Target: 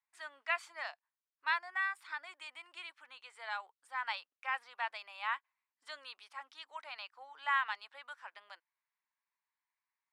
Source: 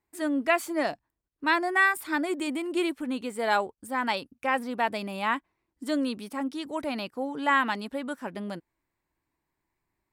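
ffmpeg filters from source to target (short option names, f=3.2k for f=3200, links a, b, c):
-filter_complex "[0:a]lowpass=4.7k,asplit=3[a][b][c];[a]afade=t=out:st=1.57:d=0.02[d];[b]acompressor=threshold=-33dB:ratio=1.5,afade=t=in:st=1.57:d=0.02,afade=t=out:st=3.63:d=0.02[e];[c]afade=t=in:st=3.63:d=0.02[f];[d][e][f]amix=inputs=3:normalize=0,highpass=f=950:w=0.5412,highpass=f=950:w=1.3066,volume=-7dB"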